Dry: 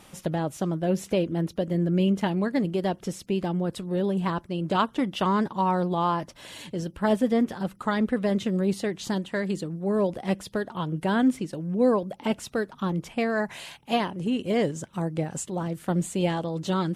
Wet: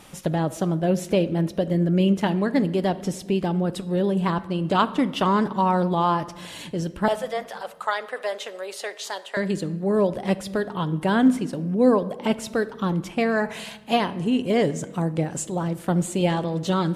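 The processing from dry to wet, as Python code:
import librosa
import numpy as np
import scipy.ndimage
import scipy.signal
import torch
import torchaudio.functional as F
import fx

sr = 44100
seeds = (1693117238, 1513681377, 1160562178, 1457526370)

y = fx.highpass(x, sr, hz=560.0, slope=24, at=(7.08, 9.37))
y = fx.room_shoebox(y, sr, seeds[0], volume_m3=900.0, walls='mixed', distance_m=0.3)
y = F.gain(torch.from_numpy(y), 3.5).numpy()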